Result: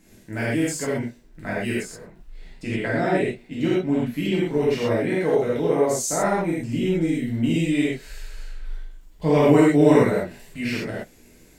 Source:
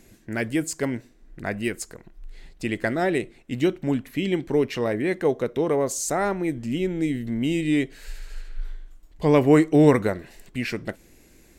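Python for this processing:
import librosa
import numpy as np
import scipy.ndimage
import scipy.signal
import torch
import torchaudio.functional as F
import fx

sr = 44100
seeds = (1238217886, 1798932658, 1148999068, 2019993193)

y = fx.high_shelf(x, sr, hz=5700.0, db=-8.0, at=(1.74, 4.09))
y = fx.dmg_crackle(y, sr, seeds[0], per_s=22.0, level_db=-48.0)
y = fx.rev_gated(y, sr, seeds[1], gate_ms=150, shape='flat', drr_db=-8.0)
y = y * librosa.db_to_amplitude(-6.5)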